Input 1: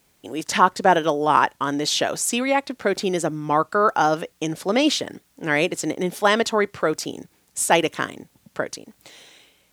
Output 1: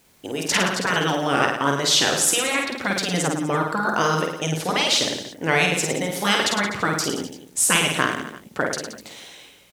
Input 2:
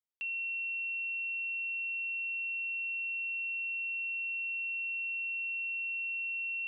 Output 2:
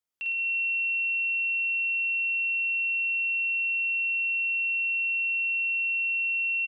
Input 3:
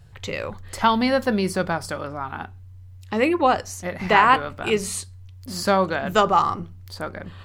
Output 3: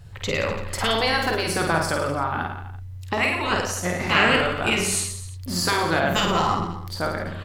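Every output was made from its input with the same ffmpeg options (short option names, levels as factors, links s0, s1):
-af "afftfilt=real='re*lt(hypot(re,im),0.447)':imag='im*lt(hypot(re,im),0.447)':win_size=1024:overlap=0.75,aecho=1:1:50|107.5|173.6|249.7|337.1:0.631|0.398|0.251|0.158|0.1,volume=1.5"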